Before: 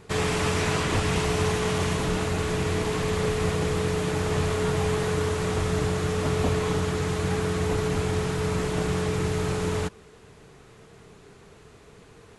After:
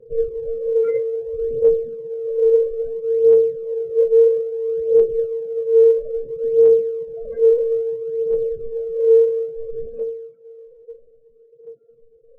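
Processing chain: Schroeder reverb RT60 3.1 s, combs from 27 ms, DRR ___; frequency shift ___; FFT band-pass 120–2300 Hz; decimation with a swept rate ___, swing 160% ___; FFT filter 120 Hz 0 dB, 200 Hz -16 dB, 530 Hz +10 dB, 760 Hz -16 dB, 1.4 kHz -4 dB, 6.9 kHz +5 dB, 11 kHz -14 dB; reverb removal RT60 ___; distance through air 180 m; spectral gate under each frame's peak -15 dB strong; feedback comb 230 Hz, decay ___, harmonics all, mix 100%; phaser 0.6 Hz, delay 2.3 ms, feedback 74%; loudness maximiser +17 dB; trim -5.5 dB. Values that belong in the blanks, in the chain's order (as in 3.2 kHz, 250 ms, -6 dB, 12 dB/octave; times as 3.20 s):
6 dB, +25 Hz, 29×, 0.84 Hz, 0.54 s, 0.32 s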